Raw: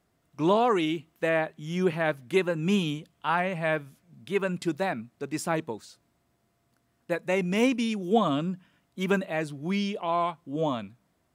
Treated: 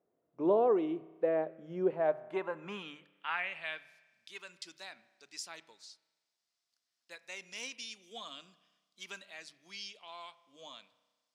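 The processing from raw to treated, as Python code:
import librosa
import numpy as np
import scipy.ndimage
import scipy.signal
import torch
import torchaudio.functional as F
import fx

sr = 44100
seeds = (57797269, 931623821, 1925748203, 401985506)

y = fx.hum_notches(x, sr, base_hz=50, count=3)
y = fx.filter_sweep_bandpass(y, sr, from_hz=470.0, to_hz=5000.0, start_s=1.82, end_s=4.1, q=2.2)
y = fx.rev_spring(y, sr, rt60_s=1.3, pass_ms=(31,), chirp_ms=60, drr_db=17.0)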